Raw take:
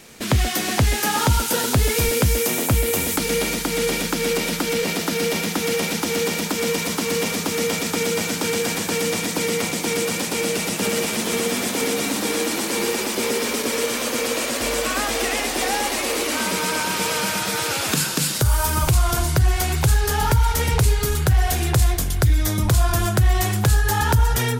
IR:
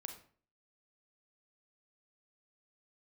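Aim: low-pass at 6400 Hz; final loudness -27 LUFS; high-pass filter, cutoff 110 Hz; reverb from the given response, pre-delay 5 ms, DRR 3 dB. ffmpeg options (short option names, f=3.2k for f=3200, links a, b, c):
-filter_complex "[0:a]highpass=110,lowpass=6.4k,asplit=2[a][b];[1:a]atrim=start_sample=2205,adelay=5[c];[b][c]afir=irnorm=-1:irlink=0,volume=0.5dB[d];[a][d]amix=inputs=2:normalize=0,volume=-5dB"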